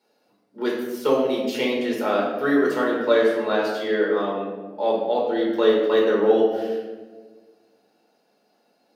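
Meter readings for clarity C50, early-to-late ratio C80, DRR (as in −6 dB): 2.0 dB, 4.5 dB, −4.5 dB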